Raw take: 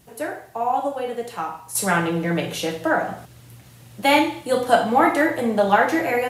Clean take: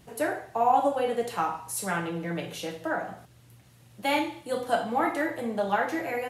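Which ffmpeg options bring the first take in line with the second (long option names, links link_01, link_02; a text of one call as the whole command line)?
ffmpeg -i in.wav -af "agate=range=-21dB:threshold=-37dB,asetnsamples=nb_out_samples=441:pad=0,asendcmd='1.75 volume volume -9.5dB',volume=0dB" out.wav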